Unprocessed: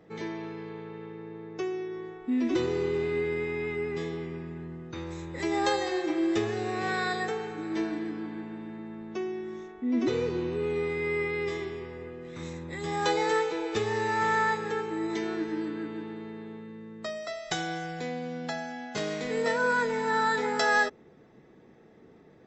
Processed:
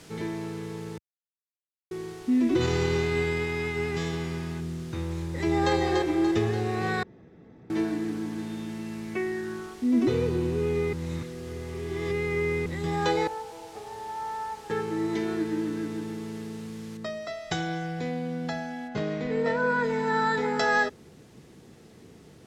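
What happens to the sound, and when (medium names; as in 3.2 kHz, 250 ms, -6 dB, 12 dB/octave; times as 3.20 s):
0.98–1.91 s: mute
2.60–4.59 s: formants flattened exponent 0.6
5.17–5.73 s: echo throw 290 ms, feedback 50%, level -3.5 dB
7.03–7.70 s: room tone
8.38–9.73 s: resonant low-pass 4.3 kHz -> 1.3 kHz, resonance Q 6.2
10.93–12.66 s: reverse
13.27–14.70 s: band-pass filter 760 Hz, Q 5
16.97 s: noise floor step -48 dB -58 dB
18.87–19.83 s: low-pass 2.1 kHz -> 3.1 kHz 6 dB/octave
whole clip: Bessel low-pass 6.4 kHz; peaking EQ 85 Hz +10.5 dB 2.7 oct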